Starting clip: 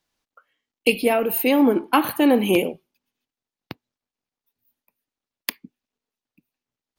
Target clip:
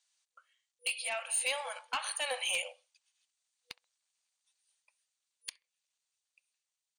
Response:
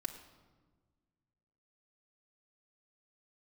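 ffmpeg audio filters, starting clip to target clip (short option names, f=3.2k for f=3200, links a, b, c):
-filter_complex "[0:a]afftfilt=real='re*between(b*sr/4096,490,9700)':imag='im*between(b*sr/4096,490,9700)':win_size=4096:overlap=0.75,dynaudnorm=f=520:g=5:m=15.5dB,aderivative,asplit=2[a][b];[b]acompressor=threshold=-41dB:ratio=6,volume=1dB[c];[a][c]amix=inputs=2:normalize=0,alimiter=limit=-16.5dB:level=0:latency=1:release=403,asplit=2[d][e];[e]adelay=66,lowpass=f=1.5k:p=1,volume=-23dB,asplit=2[f][g];[g]adelay=66,lowpass=f=1.5k:p=1,volume=0.37[h];[f][h]amix=inputs=2:normalize=0[i];[d][i]amix=inputs=2:normalize=0,asoftclip=type=tanh:threshold=-23.5dB,bandreject=f=5.2k:w=14"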